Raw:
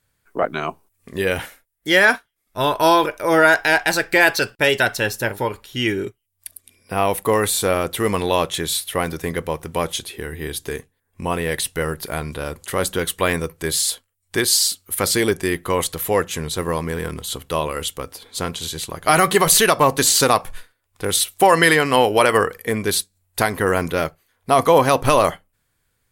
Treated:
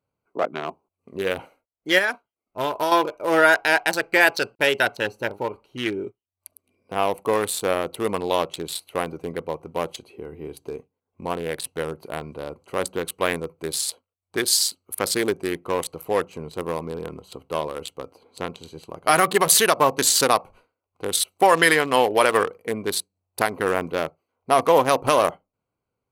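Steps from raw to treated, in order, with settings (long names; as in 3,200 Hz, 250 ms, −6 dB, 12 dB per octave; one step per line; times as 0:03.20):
adaptive Wiener filter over 25 samples
high-pass filter 340 Hz 6 dB per octave
0:01.98–0:02.92: downward compressor 5 to 1, threshold −19 dBFS, peak gain reduction 8.5 dB
level −1 dB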